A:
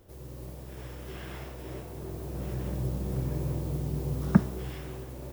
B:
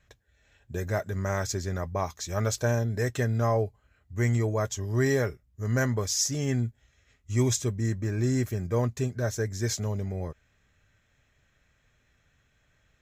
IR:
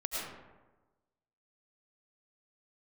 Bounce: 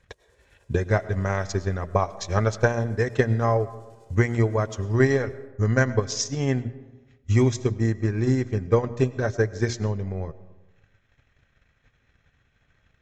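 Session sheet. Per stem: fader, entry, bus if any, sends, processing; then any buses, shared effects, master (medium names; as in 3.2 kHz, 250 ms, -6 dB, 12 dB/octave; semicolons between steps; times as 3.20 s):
-13.0 dB, 0.00 s, send -6.5 dB, high-pass 550 Hz 12 dB/octave; comb 2 ms, depth 96%; square tremolo 10 Hz, depth 60%, duty 45%; auto duck -11 dB, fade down 0.20 s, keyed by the second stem
+2.0 dB, 0.00 s, send -19 dB, hum notches 60/120/180/240/300/360 Hz; transient shaper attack +11 dB, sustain -9 dB; Gaussian low-pass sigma 1.9 samples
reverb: on, RT60 1.2 s, pre-delay 65 ms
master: resonant low-pass 7.6 kHz, resonance Q 1.8; band-stop 610 Hz, Q 14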